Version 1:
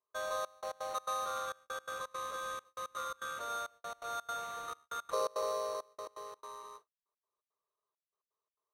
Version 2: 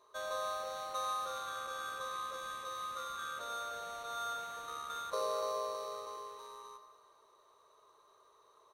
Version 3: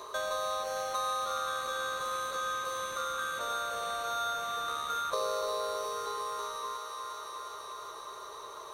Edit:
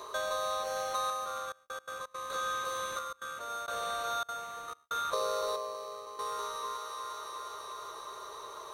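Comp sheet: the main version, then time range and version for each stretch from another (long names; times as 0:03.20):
3
0:01.10–0:02.30: punch in from 1
0:02.99–0:03.68: punch in from 1
0:04.23–0:04.91: punch in from 1
0:05.56–0:06.19: punch in from 2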